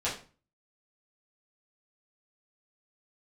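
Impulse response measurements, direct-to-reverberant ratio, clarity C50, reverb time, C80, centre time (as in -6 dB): -9.0 dB, 7.5 dB, 0.35 s, 12.5 dB, 28 ms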